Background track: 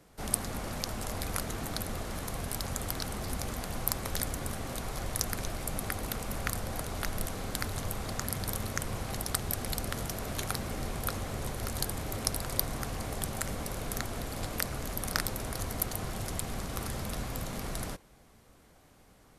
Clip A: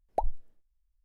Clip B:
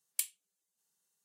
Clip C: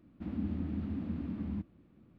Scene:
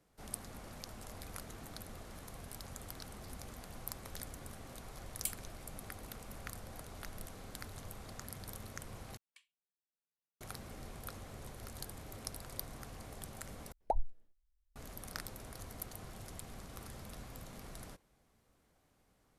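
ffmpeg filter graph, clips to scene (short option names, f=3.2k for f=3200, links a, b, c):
-filter_complex "[2:a]asplit=2[a][b];[0:a]volume=-13dB[c];[b]lowpass=2.4k[d];[c]asplit=3[e][f][g];[e]atrim=end=9.174[h];[d]atrim=end=1.24,asetpts=PTS-STARTPTS,volume=-13.5dB[i];[f]atrim=start=10.406:end=13.724[j];[1:a]atrim=end=1.04,asetpts=PTS-STARTPTS,volume=-4.5dB[k];[g]atrim=start=14.756[l];[a]atrim=end=1.24,asetpts=PTS-STARTPTS,volume=-5dB,afade=t=in:d=0.004:c=hsin,afade=t=out:st=1.236:d=0.004:c=hsin,adelay=5060[m];[h][i]acrossfade=d=0.004:c1=hsin:c2=hsin[n];[n][j]acrossfade=d=0.004:c1=hsin:c2=hsin[o];[o][k]acrossfade=d=0.004:c1=hsin:c2=hsin[p];[p][l]acrossfade=d=0.004:c1=hsin:c2=hsin[q];[q][m]amix=inputs=2:normalize=0"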